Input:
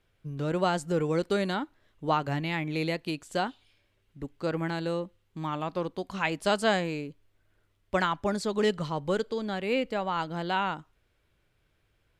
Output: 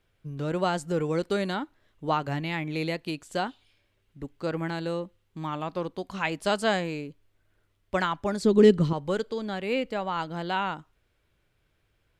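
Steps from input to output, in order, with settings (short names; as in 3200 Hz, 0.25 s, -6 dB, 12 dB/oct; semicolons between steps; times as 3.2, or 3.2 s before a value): 8.42–8.93 resonant low shelf 500 Hz +9.5 dB, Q 1.5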